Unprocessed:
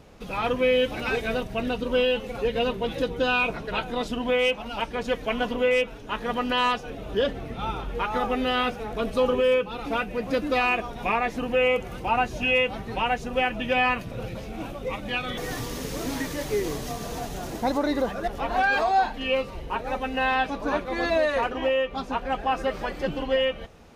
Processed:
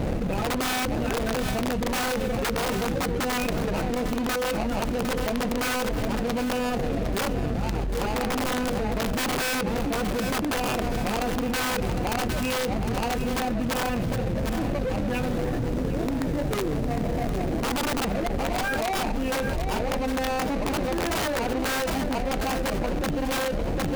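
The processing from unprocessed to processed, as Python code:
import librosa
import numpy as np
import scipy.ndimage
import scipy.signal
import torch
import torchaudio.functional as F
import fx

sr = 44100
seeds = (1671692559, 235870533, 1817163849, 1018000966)

y = scipy.signal.medfilt(x, 41)
y = fx.notch(y, sr, hz=420.0, q=12.0)
y = (np.mod(10.0 ** (22.5 / 20.0) * y + 1.0, 2.0) - 1.0) / 10.0 ** (22.5 / 20.0)
y = fx.echo_feedback(y, sr, ms=758, feedback_pct=30, wet_db=-15.5)
y = fx.env_flatten(y, sr, amount_pct=100)
y = y * 10.0 ** (-1.5 / 20.0)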